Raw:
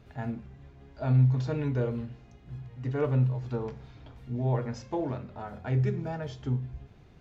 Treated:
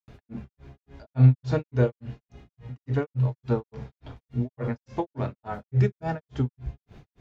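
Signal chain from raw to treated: grains 0.211 s, grains 3.5/s, pitch spread up and down by 0 st; gain +8.5 dB

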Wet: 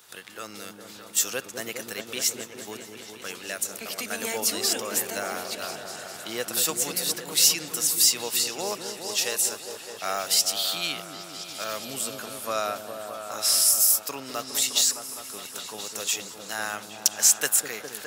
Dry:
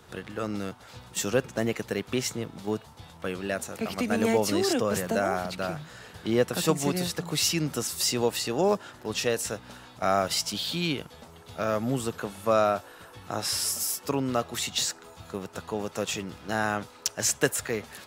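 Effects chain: tilt +4.5 dB/oct; on a send: repeats that get brighter 0.205 s, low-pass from 400 Hz, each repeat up 1 oct, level -3 dB; on the sum: gain -4.5 dB

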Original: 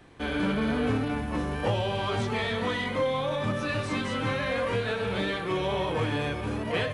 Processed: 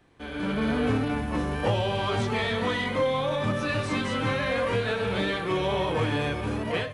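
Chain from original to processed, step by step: AGC gain up to 10 dB; gain -8 dB

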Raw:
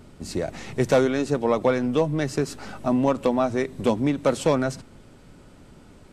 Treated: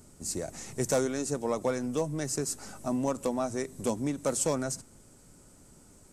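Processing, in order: resonant high shelf 5000 Hz +13.5 dB, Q 1.5; gain -8.5 dB

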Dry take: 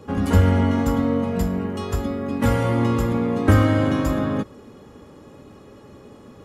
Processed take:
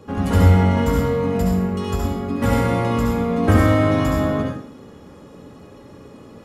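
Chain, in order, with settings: 0.75–1.27 doubler 15 ms -3 dB; reverb RT60 0.55 s, pre-delay 58 ms, DRR -1 dB; gain -1 dB

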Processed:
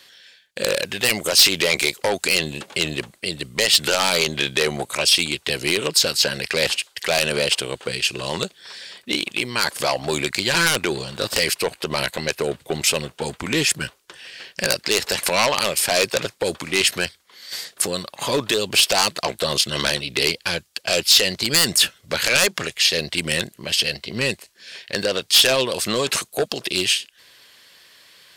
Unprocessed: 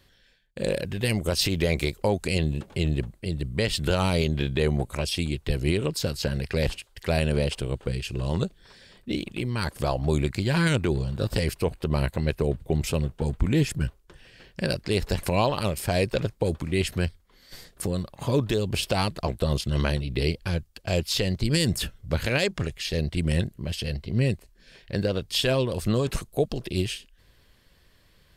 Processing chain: weighting filter A; sine folder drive 11 dB, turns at -8 dBFS; high shelf 2200 Hz +9 dB; gain -6.5 dB

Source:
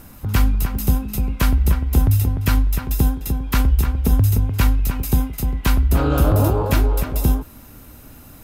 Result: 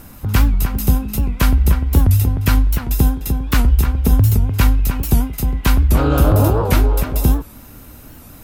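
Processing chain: record warp 78 rpm, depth 160 cents; gain +3 dB

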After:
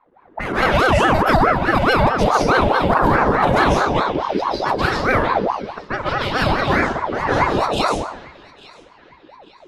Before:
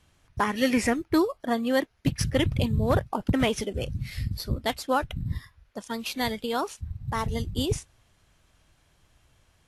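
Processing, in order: bin magnitudes rounded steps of 15 dB; low-pass opened by the level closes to 940 Hz, open at -22 dBFS; high shelf 5800 Hz -10.5 dB; notch 2000 Hz, Q 6.5; level quantiser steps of 11 dB; resonator 130 Hz, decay 0.36 s, harmonics all, mix 50%; narrowing echo 0.85 s, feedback 47%, band-pass 2200 Hz, level -17 dB; digital reverb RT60 0.76 s, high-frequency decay 0.8×, pre-delay 0.11 s, DRR -9.5 dB; maximiser +19 dB; ring modulator with a swept carrier 680 Hz, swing 55%, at 4.7 Hz; gain -3 dB

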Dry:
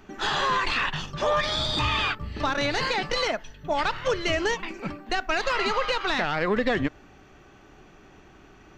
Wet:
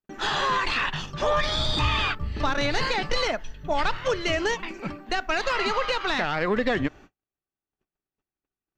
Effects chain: 1.2–3.96 low shelf 69 Hz +9.5 dB; gate -45 dBFS, range -45 dB

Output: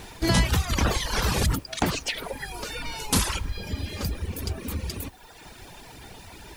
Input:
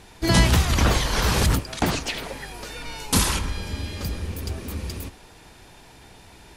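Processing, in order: reverb removal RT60 1.1 s; compressor 1.5:1, threshold -40 dBFS, peak gain reduction 10 dB; added noise blue -67 dBFS; gain +6 dB

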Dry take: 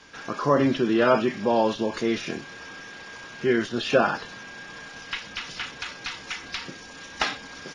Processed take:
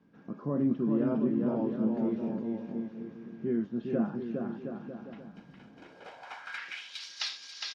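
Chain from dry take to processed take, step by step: 5.21–6.58 minimum comb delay 1.3 ms; bouncing-ball echo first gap 0.41 s, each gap 0.75×, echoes 5; band-pass sweep 200 Hz -> 4600 Hz, 5.63–7.05

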